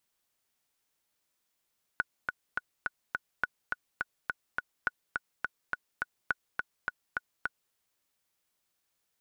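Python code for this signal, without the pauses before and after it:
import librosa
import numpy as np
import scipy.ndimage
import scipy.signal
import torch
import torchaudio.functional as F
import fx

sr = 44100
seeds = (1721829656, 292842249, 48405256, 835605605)

y = fx.click_track(sr, bpm=209, beats=5, bars=4, hz=1470.0, accent_db=3.5, level_db=-14.0)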